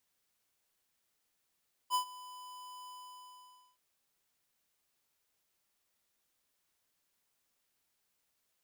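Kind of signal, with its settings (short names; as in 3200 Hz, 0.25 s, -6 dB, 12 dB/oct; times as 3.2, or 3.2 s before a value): ADSR square 1000 Hz, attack 48 ms, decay 96 ms, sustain -20 dB, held 0.98 s, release 0.898 s -29 dBFS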